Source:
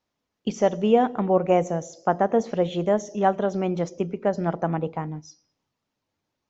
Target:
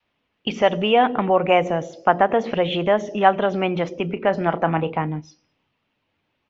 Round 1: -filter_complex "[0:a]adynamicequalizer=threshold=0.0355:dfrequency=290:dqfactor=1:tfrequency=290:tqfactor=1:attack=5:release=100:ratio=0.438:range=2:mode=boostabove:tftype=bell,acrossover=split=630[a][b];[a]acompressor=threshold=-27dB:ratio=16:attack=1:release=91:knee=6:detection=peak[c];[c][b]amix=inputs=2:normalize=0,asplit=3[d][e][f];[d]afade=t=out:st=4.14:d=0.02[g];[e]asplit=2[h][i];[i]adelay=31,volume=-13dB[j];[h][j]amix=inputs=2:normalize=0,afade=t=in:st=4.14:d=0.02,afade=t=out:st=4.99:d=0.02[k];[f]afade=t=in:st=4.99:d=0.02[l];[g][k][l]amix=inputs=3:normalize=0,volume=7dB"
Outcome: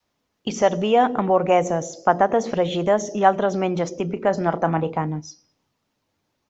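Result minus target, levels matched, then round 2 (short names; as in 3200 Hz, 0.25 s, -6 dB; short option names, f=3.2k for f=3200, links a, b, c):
2000 Hz band -3.5 dB
-filter_complex "[0:a]adynamicequalizer=threshold=0.0355:dfrequency=290:dqfactor=1:tfrequency=290:tqfactor=1:attack=5:release=100:ratio=0.438:range=2:mode=boostabove:tftype=bell,lowpass=f=2.8k:t=q:w=2.5,acrossover=split=630[a][b];[a]acompressor=threshold=-27dB:ratio=16:attack=1:release=91:knee=6:detection=peak[c];[c][b]amix=inputs=2:normalize=0,asplit=3[d][e][f];[d]afade=t=out:st=4.14:d=0.02[g];[e]asplit=2[h][i];[i]adelay=31,volume=-13dB[j];[h][j]amix=inputs=2:normalize=0,afade=t=in:st=4.14:d=0.02,afade=t=out:st=4.99:d=0.02[k];[f]afade=t=in:st=4.99:d=0.02[l];[g][k][l]amix=inputs=3:normalize=0,volume=7dB"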